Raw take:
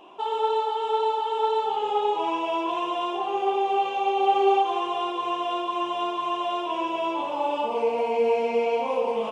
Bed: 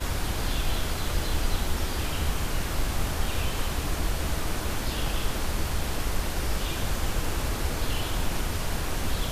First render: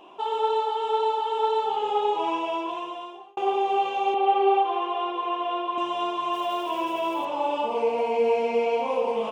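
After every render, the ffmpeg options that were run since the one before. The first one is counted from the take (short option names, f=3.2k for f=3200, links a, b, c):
-filter_complex "[0:a]asettb=1/sr,asplit=3[a][b][c];[a]atrim=end=4.144[d];[b]atrim=start=4.14:end=5.78,asetpts=PTS-STARTPTS,afade=t=in:d=0.004:c=qsin,afade=t=out:st=1.636:d=0.004:c=qsin,acrossover=split=220 3700:gain=0.0794 1 0.0794[e][f][g];[e][f][g]amix=inputs=3:normalize=0[h];[c]atrim=start=5.776[i];[d][h]acrossfade=d=0.004:c1=hsin:c2=qsin[j];[j][i]acrossfade=d=0.004:c1=qsin:c2=hsin,asettb=1/sr,asplit=3[k][l][m];[k]atrim=end=6.334[n];[l]atrim=start=6.33:end=7.25,asetpts=PTS-STARTPTS,afade=t=in:d=0.004:c=qsin,afade=t=out:st=0.916:d=0.004:c=qsin,aeval=exprs='val(0)*gte(abs(val(0)),0.0075)':c=same[o];[m]atrim=start=7.246[p];[n][o]acrossfade=d=0.004:c1=hsin:c2=qsin[q];[q][p]acrossfade=d=0.004:c1=qsin:c2=hsin,asplit=2[r][s];[r]atrim=end=3.37,asetpts=PTS-STARTPTS,afade=t=out:st=2.34:d=1.03[t];[s]atrim=start=3.37,asetpts=PTS-STARTPTS,afade=t=in:d=0.004:c=hsin[u];[t][u]concat=n=2:v=0:a=1"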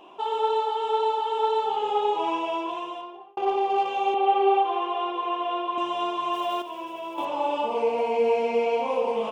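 -filter_complex "[0:a]asettb=1/sr,asplit=3[a][b][c];[a]atrim=end=3.014[d];[b]atrim=start=3.01:end=3.89,asetpts=PTS-STARTPTS,afade=t=in:d=0.004:c=qsin,afade=t=out:st=0.876:d=0.004:c=qsin,adynamicsmooth=sensitivity=2.5:basefreq=3k[e];[c]atrim=start=3.886[f];[d][e]acrossfade=d=0.004:c1=hsin:c2=qsin[g];[g][f]acrossfade=d=0.004:c1=qsin:c2=hsin,asplit=3[h][i][j];[h]atrim=end=6.622[k];[i]atrim=start=6.618:end=7.182,asetpts=PTS-STARTPTS,volume=-8dB[l];[j]atrim=start=7.178[m];[k][l]acrossfade=d=0.004:c1=hsin:c2=hsin[n];[n][m]acrossfade=d=0.004:c1=hsin:c2=hsin"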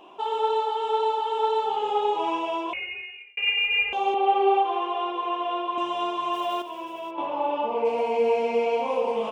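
-filter_complex "[0:a]asettb=1/sr,asplit=3[a][b][c];[a]atrim=end=2.734[d];[b]atrim=start=2.73:end=3.93,asetpts=PTS-STARTPTS,afade=t=in:d=0.004:c=qsin,afade=t=out:st=1.196:d=0.004:c=qsin,lowpass=f=2.7k:t=q:w=0.5098,lowpass=f=2.7k:t=q:w=0.6013,lowpass=f=2.7k:t=q:w=0.9,lowpass=f=2.7k:t=q:w=2.563,afreqshift=-3200[e];[c]atrim=start=3.926[f];[d][e]acrossfade=d=0.004:c1=hsin:c2=qsin[g];[g][f]acrossfade=d=0.004:c1=qsin:c2=hsin,asplit=3[h][i][j];[h]afade=t=out:st=7.1:d=0.02[k];[i]lowpass=2.7k,afade=t=in:st=7.1:d=0.02,afade=t=out:st=7.84:d=0.02[l];[j]afade=t=in:st=7.84:d=0.02[m];[k][l][m]amix=inputs=3:normalize=0"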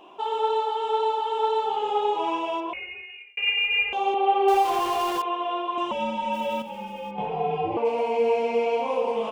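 -filter_complex "[0:a]asettb=1/sr,asplit=3[a][b][c];[a]atrim=end=2.604[d];[b]atrim=start=2.6:end=3.1,asetpts=PTS-STARTPTS,afade=t=in:d=0.004:c=qsin,afade=t=out:st=0.496:d=0.004:c=qsin,aemphasis=mode=reproduction:type=75kf[e];[c]atrim=start=3.096[f];[d][e]acrossfade=d=0.004:c1=hsin:c2=qsin[g];[g][f]acrossfade=d=0.004:c1=qsin:c2=hsin,asettb=1/sr,asplit=3[h][i][j];[h]atrim=end=4.484[k];[i]atrim=start=4.48:end=5.22,asetpts=PTS-STARTPTS,afade=t=in:d=0.004:c=qsin,afade=t=out:st=0.736:d=0.004:c=qsin,aeval=exprs='val(0)+0.5*0.0376*sgn(val(0))':c=same[l];[j]atrim=start=5.216[m];[k][l]acrossfade=d=0.004:c1=hsin:c2=qsin[n];[n][m]acrossfade=d=0.004:c1=qsin:c2=hsin,asettb=1/sr,asplit=3[o][p][q];[o]atrim=end=5.914[r];[p]atrim=start=5.91:end=7.77,asetpts=PTS-STARTPTS,afade=t=in:d=0.004:c=qsin,afade=t=out:st=1.856:d=0.004:c=qsin,afreqshift=-130[s];[q]atrim=start=7.766[t];[r][s]acrossfade=d=0.004:c1=hsin:c2=qsin[u];[u][t]acrossfade=d=0.004:c1=qsin:c2=hsin"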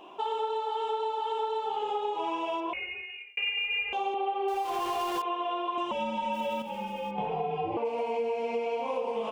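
-af "acompressor=threshold=-28dB:ratio=6"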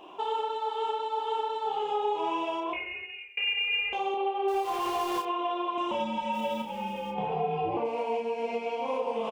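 -filter_complex "[0:a]asplit=2[a][b];[b]adelay=31,volume=-5.5dB[c];[a][c]amix=inputs=2:normalize=0,asplit=2[d][e];[e]adelay=92,lowpass=f=3.3k:p=1,volume=-15dB,asplit=2[f][g];[g]adelay=92,lowpass=f=3.3k:p=1,volume=0.42,asplit=2[h][i];[i]adelay=92,lowpass=f=3.3k:p=1,volume=0.42,asplit=2[j][k];[k]adelay=92,lowpass=f=3.3k:p=1,volume=0.42[l];[d][f][h][j][l]amix=inputs=5:normalize=0"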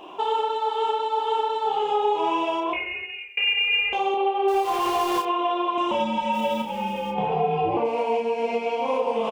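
-af "volume=6.5dB"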